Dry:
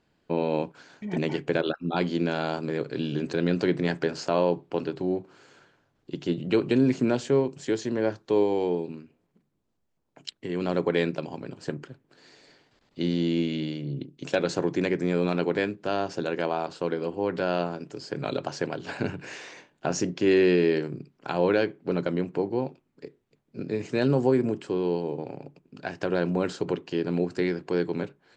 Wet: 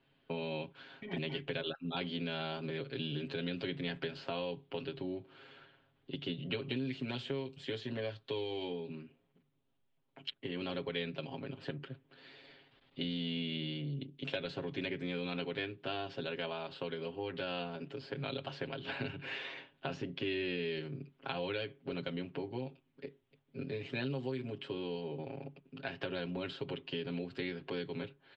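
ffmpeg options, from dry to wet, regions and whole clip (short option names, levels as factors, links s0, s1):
-filter_complex "[0:a]asettb=1/sr,asplit=3[s0][s1][s2];[s0]atrim=end=7.084[s3];[s1]atrim=start=7.08:end=8.72,asetpts=PTS-STARTPTS,afade=t=in:d=0.004:c=qsin,afade=t=out:st=1.636:d=0.004:c=qsin,highshelf=f=4300:g=6,asplit=2[s4][s5];[s5]adelay=18,volume=0.2[s6];[s4][s6]amix=inputs=2:normalize=0,atrim=end_sample=72324[s7];[s2]atrim=start=8.716[s8];[s3][s7]acrossfade=d=0.004:c1=hsin:c2=qsin[s9];[s9][s8]acrossfade=d=0.004:c1=qsin:c2=hsin,aecho=1:1:7.4:0.94,acrossover=split=110|2700[s10][s11][s12];[s10]acompressor=threshold=0.00794:ratio=4[s13];[s11]acompressor=threshold=0.0224:ratio=4[s14];[s12]acompressor=threshold=0.01:ratio=4[s15];[s13][s14][s15]amix=inputs=3:normalize=0,highshelf=f=4700:t=q:w=3:g=-13,volume=0.501"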